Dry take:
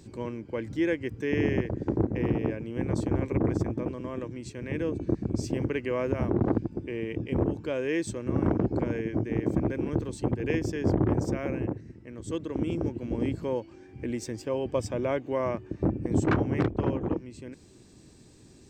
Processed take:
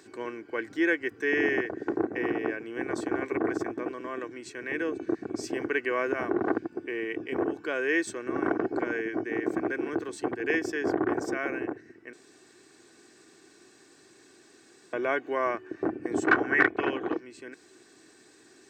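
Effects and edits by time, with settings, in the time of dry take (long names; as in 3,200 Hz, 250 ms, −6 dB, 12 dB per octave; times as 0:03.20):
0:12.13–0:14.93: fill with room tone
0:16.42–0:17.19: parametric band 1,400 Hz → 4,400 Hz +12 dB
whole clip: high-pass filter 330 Hz 12 dB per octave; parametric band 1,600 Hz +11.5 dB 0.76 octaves; comb filter 2.7 ms, depth 44%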